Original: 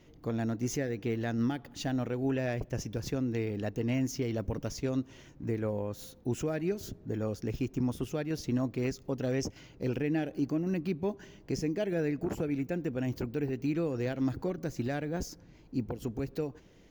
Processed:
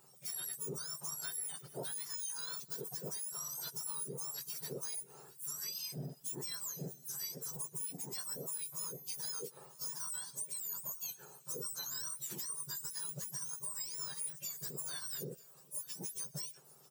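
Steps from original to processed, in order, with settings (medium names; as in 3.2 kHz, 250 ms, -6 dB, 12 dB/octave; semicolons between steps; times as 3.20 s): spectrum inverted on a logarithmic axis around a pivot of 1.6 kHz; treble shelf 7.9 kHz +8.5 dB; compression, threshold -36 dBFS, peak gain reduction 11.5 dB; delay 939 ms -21.5 dB; 8.19–9.32 s: whistle 12 kHz -49 dBFS; trim -2.5 dB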